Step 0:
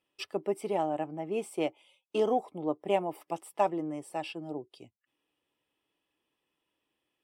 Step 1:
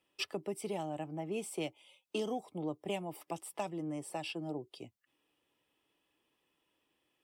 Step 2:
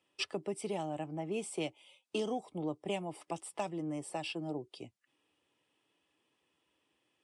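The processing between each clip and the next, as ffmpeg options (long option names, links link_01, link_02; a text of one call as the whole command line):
ffmpeg -i in.wav -filter_complex "[0:a]acrossover=split=180|3000[link_01][link_02][link_03];[link_02]acompressor=threshold=-41dB:ratio=5[link_04];[link_01][link_04][link_03]amix=inputs=3:normalize=0,volume=3dB" out.wav
ffmpeg -i in.wav -af "volume=1dB" -ar 22050 -c:a libvorbis -b:a 64k out.ogg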